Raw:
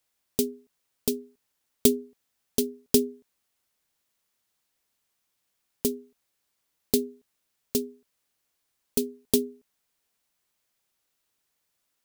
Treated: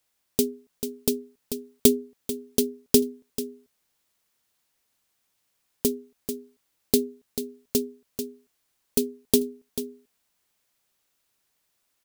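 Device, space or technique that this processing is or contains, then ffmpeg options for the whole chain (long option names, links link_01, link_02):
ducked delay: -filter_complex "[0:a]asplit=3[link_01][link_02][link_03];[link_02]adelay=440,volume=-6dB[link_04];[link_03]apad=whole_len=550790[link_05];[link_04][link_05]sidechaincompress=threshold=-33dB:ratio=8:attack=16:release=554[link_06];[link_01][link_06]amix=inputs=2:normalize=0,volume=2.5dB"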